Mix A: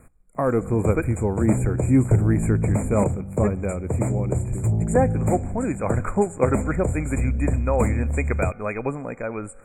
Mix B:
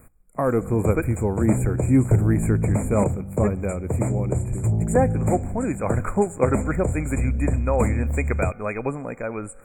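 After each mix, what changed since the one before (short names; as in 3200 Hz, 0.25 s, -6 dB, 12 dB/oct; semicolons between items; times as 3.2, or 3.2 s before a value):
speech: remove LPF 9400 Hz 12 dB/oct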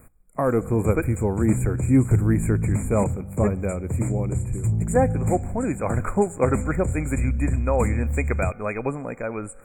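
background: add bell 610 Hz -13 dB 1.7 oct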